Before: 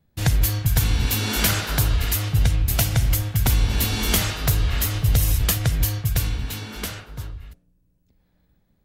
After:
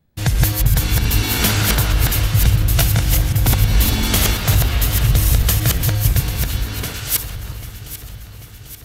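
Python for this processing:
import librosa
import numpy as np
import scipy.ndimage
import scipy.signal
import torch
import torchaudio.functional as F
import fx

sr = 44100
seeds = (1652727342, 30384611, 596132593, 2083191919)

y = fx.reverse_delay(x, sr, ms=175, wet_db=-0.5)
y = fx.riaa(y, sr, side='recording', at=(6.94, 7.36))
y = fx.echo_alternate(y, sr, ms=396, hz=1200.0, feedback_pct=77, wet_db=-11.5)
y = F.gain(torch.from_numpy(y), 2.0).numpy()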